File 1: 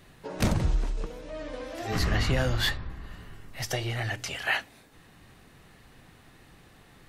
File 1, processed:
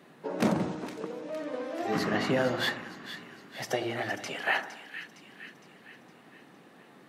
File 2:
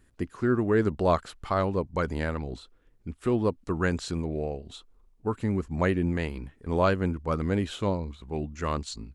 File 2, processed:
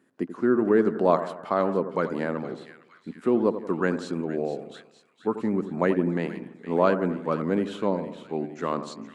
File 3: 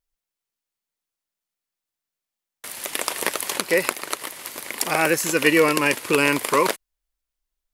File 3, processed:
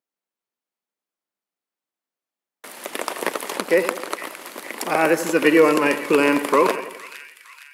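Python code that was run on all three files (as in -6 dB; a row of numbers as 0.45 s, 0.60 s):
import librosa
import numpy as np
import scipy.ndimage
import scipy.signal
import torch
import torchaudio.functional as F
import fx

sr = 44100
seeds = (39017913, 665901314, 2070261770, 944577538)

p1 = scipy.signal.sosfilt(scipy.signal.butter(4, 190.0, 'highpass', fs=sr, output='sos'), x)
p2 = fx.high_shelf(p1, sr, hz=2100.0, db=-11.5)
p3 = p2 + fx.echo_split(p2, sr, split_hz=1600.0, low_ms=87, high_ms=461, feedback_pct=52, wet_db=-11.0, dry=0)
y = F.gain(torch.from_numpy(p3), 4.0).numpy()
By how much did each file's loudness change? -2.0 LU, +2.5 LU, +1.0 LU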